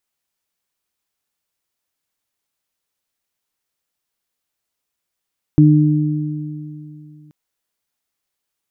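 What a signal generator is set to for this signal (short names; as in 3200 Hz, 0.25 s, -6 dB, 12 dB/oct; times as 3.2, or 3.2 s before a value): additive tone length 1.73 s, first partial 151 Hz, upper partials -1 dB, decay 2.89 s, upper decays 2.60 s, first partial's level -7.5 dB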